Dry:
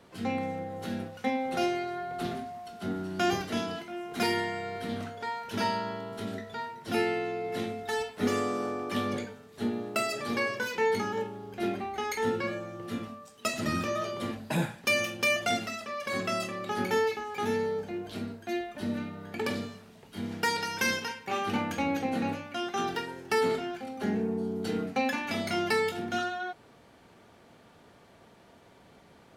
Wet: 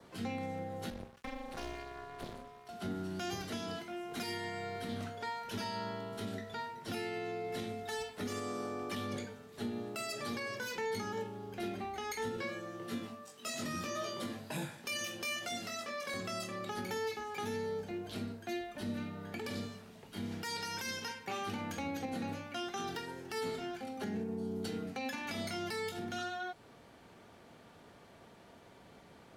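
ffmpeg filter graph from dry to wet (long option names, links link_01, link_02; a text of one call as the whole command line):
ffmpeg -i in.wav -filter_complex "[0:a]asettb=1/sr,asplit=3[link_01][link_02][link_03];[link_01]atrim=end=0.904[link_04];[link_02]atrim=start=0.9:end=2.69,asetpts=PTS-STARTPTS,afade=type=in:duration=0.004:curve=qsin,afade=type=out:start_time=1.786:duration=0.004:curve=qsin,tremolo=f=290:d=0.974,aeval=exprs='sgn(val(0))*max(abs(val(0))-0.00335,0)':channel_layout=same,aeval=exprs='(tanh(25.1*val(0)+0.65)-tanh(0.65))/25.1':channel_layout=same[link_05];[link_03]atrim=start=2.686[link_06];[link_04][link_05]acrossfade=duration=0.004:curve1=hsin:curve2=qsin[link_07];[link_07][link_06]acrossfade=duration=0.004:curve1=qsin:curve2=hsin,asettb=1/sr,asplit=3[link_08][link_09][link_10];[link_08]atrim=end=12.364[link_11];[link_09]atrim=start=12.36:end=16.14,asetpts=PTS-STARTPTS,afade=type=in:duration=0.004:curve=qsin,afade=type=out:start_time=3.776:duration=0.004:curve=qsin,highpass=150,asplit=2[link_12][link_13];[link_13]adelay=21,volume=-3dB[link_14];[link_12][link_14]amix=inputs=2:normalize=0,atrim=end_sample=166698[link_15];[link_10]atrim=start=16.136[link_16];[link_11][link_15]acrossfade=duration=0.004:curve1=hsin:curve2=qsin[link_17];[link_17][link_16]acrossfade=duration=0.004:curve1=qsin:curve2=hsin,adynamicequalizer=threshold=0.00282:dfrequency=2700:dqfactor=4:tfrequency=2700:tqfactor=4:attack=5:release=100:ratio=0.375:range=2:mode=cutabove:tftype=bell,acrossover=split=140|3000[link_18][link_19][link_20];[link_19]acompressor=threshold=-44dB:ratio=1.5[link_21];[link_18][link_21][link_20]amix=inputs=3:normalize=0,alimiter=level_in=4.5dB:limit=-24dB:level=0:latency=1:release=119,volume=-4.5dB,volume=-1dB" out.wav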